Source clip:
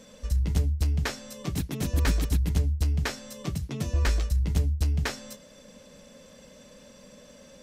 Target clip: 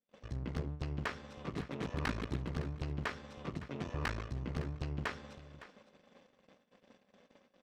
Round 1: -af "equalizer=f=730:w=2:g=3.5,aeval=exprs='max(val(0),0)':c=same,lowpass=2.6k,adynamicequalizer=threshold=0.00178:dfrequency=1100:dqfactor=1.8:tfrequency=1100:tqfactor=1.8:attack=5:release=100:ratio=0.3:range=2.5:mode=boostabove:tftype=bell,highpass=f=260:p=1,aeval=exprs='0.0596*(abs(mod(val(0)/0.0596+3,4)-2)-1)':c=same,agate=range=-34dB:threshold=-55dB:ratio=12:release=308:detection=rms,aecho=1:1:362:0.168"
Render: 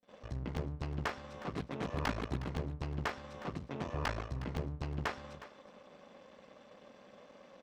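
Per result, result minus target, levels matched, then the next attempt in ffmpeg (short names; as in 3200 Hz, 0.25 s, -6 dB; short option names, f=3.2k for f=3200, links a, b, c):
echo 0.198 s early; 1000 Hz band +3.0 dB
-af "equalizer=f=730:w=2:g=3.5,aeval=exprs='max(val(0),0)':c=same,lowpass=2.6k,adynamicequalizer=threshold=0.00178:dfrequency=1100:dqfactor=1.8:tfrequency=1100:tqfactor=1.8:attack=5:release=100:ratio=0.3:range=2.5:mode=boostabove:tftype=bell,highpass=f=260:p=1,aeval=exprs='0.0596*(abs(mod(val(0)/0.0596+3,4)-2)-1)':c=same,agate=range=-34dB:threshold=-55dB:ratio=12:release=308:detection=rms,aecho=1:1:560:0.168"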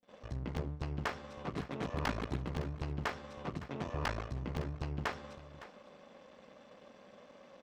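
1000 Hz band +3.0 dB
-af "equalizer=f=730:w=2:g=-7.5,aeval=exprs='max(val(0),0)':c=same,lowpass=2.6k,adynamicequalizer=threshold=0.00178:dfrequency=1100:dqfactor=1.8:tfrequency=1100:tqfactor=1.8:attack=5:release=100:ratio=0.3:range=2.5:mode=boostabove:tftype=bell,highpass=f=260:p=1,aeval=exprs='0.0596*(abs(mod(val(0)/0.0596+3,4)-2)-1)':c=same,agate=range=-34dB:threshold=-55dB:ratio=12:release=308:detection=rms,aecho=1:1:560:0.168"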